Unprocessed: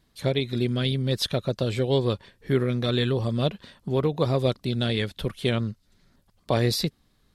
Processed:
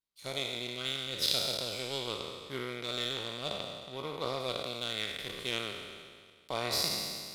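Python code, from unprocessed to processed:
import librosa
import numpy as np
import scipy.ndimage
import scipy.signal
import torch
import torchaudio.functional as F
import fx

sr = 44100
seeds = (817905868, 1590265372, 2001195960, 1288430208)

y = fx.spec_trails(x, sr, decay_s=2.68)
y = fx.low_shelf(y, sr, hz=380.0, db=-9.0)
y = fx.power_curve(y, sr, exponent=1.4)
y = fx.tilt_shelf(y, sr, db=-3.5, hz=1100.0)
y = fx.notch(y, sr, hz=1700.0, q=6.8)
y = y * librosa.db_to_amplitude(-5.5)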